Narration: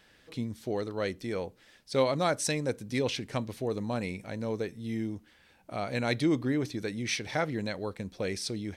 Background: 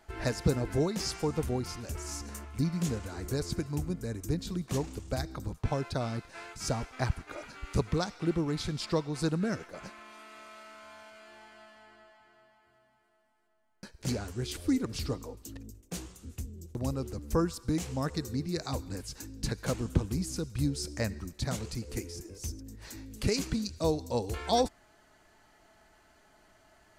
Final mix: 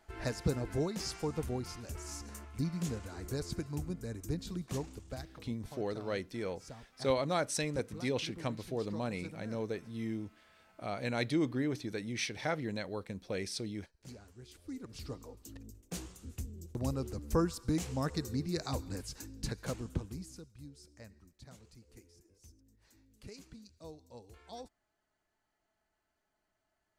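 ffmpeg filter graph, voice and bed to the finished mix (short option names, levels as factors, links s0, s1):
-filter_complex "[0:a]adelay=5100,volume=0.596[s0];[1:a]volume=3.55,afade=t=out:st=4.66:d=0.9:silence=0.223872,afade=t=in:st=14.65:d=1.4:silence=0.158489,afade=t=out:st=18.99:d=1.58:silence=0.112202[s1];[s0][s1]amix=inputs=2:normalize=0"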